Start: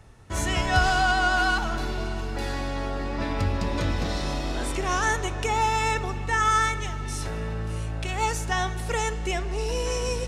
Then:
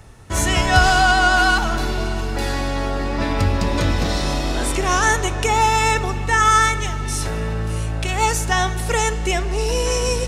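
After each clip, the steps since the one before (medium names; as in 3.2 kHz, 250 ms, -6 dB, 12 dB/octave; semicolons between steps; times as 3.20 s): treble shelf 7.5 kHz +6 dB; trim +7 dB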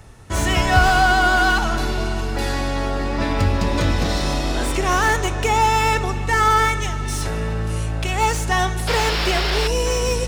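painted sound noise, 8.87–9.68 s, 280–5600 Hz -23 dBFS; slew-rate limiter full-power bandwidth 290 Hz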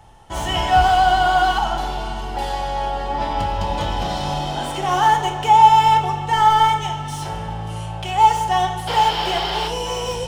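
small resonant body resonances 830/3100 Hz, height 16 dB, ringing for 20 ms; reverberation RT60 0.95 s, pre-delay 6 ms, DRR 4 dB; trim -7.5 dB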